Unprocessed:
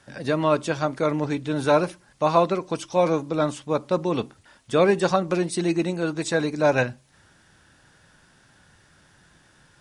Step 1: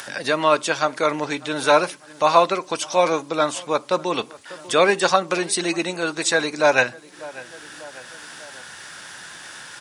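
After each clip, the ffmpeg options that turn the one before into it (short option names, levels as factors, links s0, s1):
-filter_complex "[0:a]asplit=2[s0][s1];[s1]adelay=595,lowpass=f=2000:p=1,volume=0.0708,asplit=2[s2][s3];[s3]adelay=595,lowpass=f=2000:p=1,volume=0.44,asplit=2[s4][s5];[s5]adelay=595,lowpass=f=2000:p=1,volume=0.44[s6];[s0][s2][s4][s6]amix=inputs=4:normalize=0,asplit=2[s7][s8];[s8]acompressor=mode=upward:threshold=0.0794:ratio=2.5,volume=0.708[s9];[s7][s9]amix=inputs=2:normalize=0,highpass=f=1200:p=1,volume=1.78"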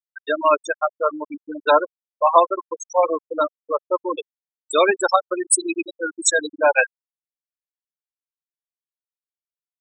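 -af "aemphasis=mode=production:type=50kf,afftfilt=real='re*gte(hypot(re,im),0.398)':imag='im*gte(hypot(re,im),0.398)':win_size=1024:overlap=0.75,equalizer=f=1100:t=o:w=0.77:g=2"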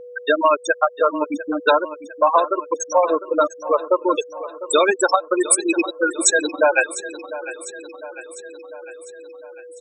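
-af "aeval=exprs='val(0)+0.00708*sin(2*PI*490*n/s)':c=same,acompressor=threshold=0.1:ratio=6,aecho=1:1:701|1402|2103|2804|3505|4206:0.178|0.101|0.0578|0.0329|0.0188|0.0107,volume=2.37"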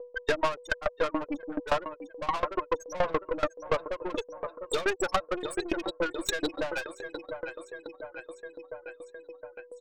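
-af "lowpass=4800,aeval=exprs='(tanh(10*val(0)+0.5)-tanh(0.5))/10':c=same,aeval=exprs='val(0)*pow(10,-22*if(lt(mod(7*n/s,1),2*abs(7)/1000),1-mod(7*n/s,1)/(2*abs(7)/1000),(mod(7*n/s,1)-2*abs(7)/1000)/(1-2*abs(7)/1000))/20)':c=same,volume=1.26"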